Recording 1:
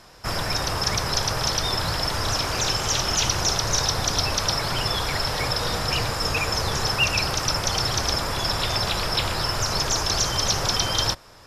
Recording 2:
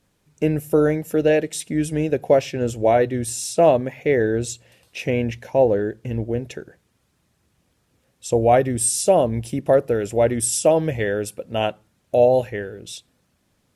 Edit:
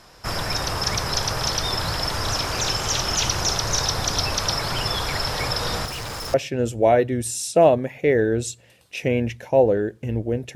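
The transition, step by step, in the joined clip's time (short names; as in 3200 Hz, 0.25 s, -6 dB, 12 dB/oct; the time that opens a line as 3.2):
recording 1
5.85–6.34 overloaded stage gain 29.5 dB
6.34 switch to recording 2 from 2.36 s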